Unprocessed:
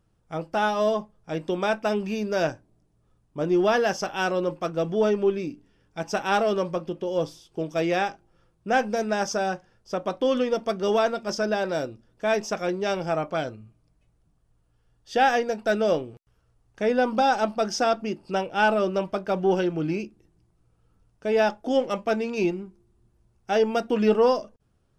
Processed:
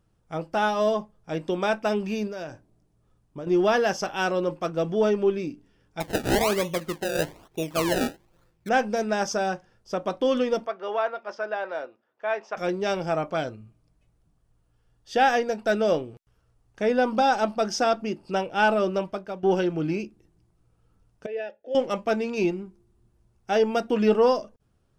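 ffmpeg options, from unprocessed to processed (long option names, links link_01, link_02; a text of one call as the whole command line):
ffmpeg -i in.wav -filter_complex "[0:a]asettb=1/sr,asplit=3[link_01][link_02][link_03];[link_01]atrim=end=2.274[link_04];[link_02]atrim=start=2.27:end=3.47,asetpts=PTS-STARTPTS,afade=type=in:duration=0.004:curve=qsin,afade=type=out:start_time=1.196:duration=0.004:curve=qsin,acompressor=threshold=-32dB:ratio=6:attack=3.2:release=140:knee=1:detection=peak[link_05];[link_03]atrim=start=3.466[link_06];[link_04][link_05]acrossfade=duration=0.004:curve1=hsin:curve2=qsin[link_07];[link_07][link_06]acrossfade=duration=0.004:curve1=qsin:curve2=hsin,asettb=1/sr,asplit=3[link_08][link_09][link_10];[link_08]atrim=end=6.004[link_11];[link_09]atrim=start=6:end=8.69,asetpts=PTS-STARTPTS,afade=type=in:duration=0.004:curve=qsin,afade=type=out:start_time=2.686:duration=0.004:curve=qsin,acrusher=samples=28:mix=1:aa=0.000001:lfo=1:lforange=28:lforate=1.1[link_12];[link_10]atrim=start=8.686[link_13];[link_11][link_12]acrossfade=duration=0.004:curve1=hsin:curve2=qsin[link_14];[link_14][link_13]acrossfade=duration=0.004:curve1=qsin:curve2=hsin,asplit=3[link_15][link_16][link_17];[link_15]afade=type=out:start_time=10.65:duration=0.02[link_18];[link_16]highpass=680,lowpass=2000,afade=type=in:start_time=10.65:duration=0.02,afade=type=out:start_time=12.56:duration=0.02[link_19];[link_17]afade=type=in:start_time=12.56:duration=0.02[link_20];[link_18][link_19][link_20]amix=inputs=3:normalize=0,asettb=1/sr,asplit=3[link_21][link_22][link_23];[link_21]atrim=end=21.264[link_24];[link_22]atrim=start=21.26:end=21.75,asetpts=PTS-STARTPTS,afade=type=in:duration=0.004:curve=qsin,afade=type=out:start_time=0.486:duration=0.004:curve=qsin,asplit=3[link_25][link_26][link_27];[link_25]bandpass=frequency=530:width_type=q:width=8,volume=0dB[link_28];[link_26]bandpass=frequency=1840:width_type=q:width=8,volume=-6dB[link_29];[link_27]bandpass=frequency=2480:width_type=q:width=8,volume=-9dB[link_30];[link_28][link_29][link_30]amix=inputs=3:normalize=0[link_31];[link_23]atrim=start=21.746[link_32];[link_24][link_31]acrossfade=duration=0.004:curve1=hsin:curve2=qsin[link_33];[link_33][link_32]acrossfade=duration=0.004:curve1=qsin:curve2=hsin,asplit=2[link_34][link_35];[link_34]atrim=end=19.43,asetpts=PTS-STARTPTS,afade=type=out:start_time=18.93:duration=0.5:silence=0.188365[link_36];[link_35]atrim=start=19.43,asetpts=PTS-STARTPTS,afade=type=in:duration=0.004:curve=hsin:silence=0.188365[link_37];[link_36][link_37]concat=n=2:v=0:a=1" out.wav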